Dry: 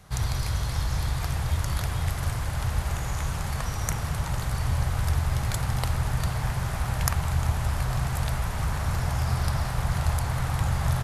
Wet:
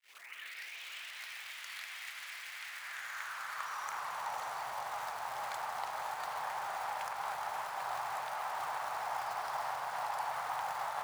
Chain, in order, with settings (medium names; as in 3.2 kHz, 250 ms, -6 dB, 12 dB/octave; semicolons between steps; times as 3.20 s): tape start-up on the opening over 1.37 s; low-pass 2.9 kHz 6 dB/octave; peak limiter -18.5 dBFS, peak gain reduction 10 dB; on a send: echo that smears into a reverb 570 ms, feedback 59%, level -5.5 dB; on the sum: companded quantiser 6-bit; high-pass sweep 2.2 kHz -> 820 Hz, 2.58–4.35 s; trim -7 dB